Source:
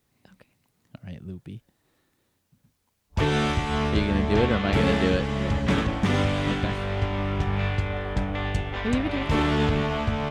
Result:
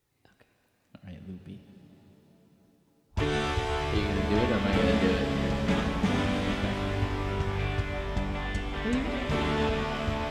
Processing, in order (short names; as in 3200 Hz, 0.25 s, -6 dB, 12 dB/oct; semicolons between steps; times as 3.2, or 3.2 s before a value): flange 0.27 Hz, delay 2.1 ms, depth 3.1 ms, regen -40%; shimmer reverb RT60 3.9 s, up +7 st, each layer -8 dB, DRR 5 dB; gain -1 dB